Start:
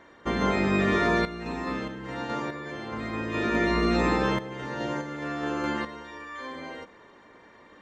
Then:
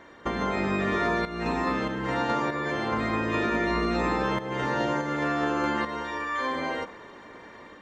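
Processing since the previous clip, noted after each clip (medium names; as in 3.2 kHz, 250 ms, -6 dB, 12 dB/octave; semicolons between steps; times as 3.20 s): compression 6:1, threshold -32 dBFS, peak gain reduction 11.5 dB; dynamic bell 970 Hz, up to +4 dB, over -49 dBFS, Q 0.79; level rider gain up to 4 dB; trim +3 dB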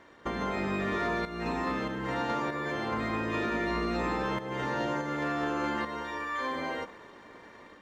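waveshaping leveller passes 1; trim -7.5 dB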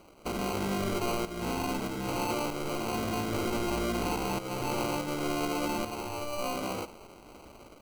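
sample-and-hold 25×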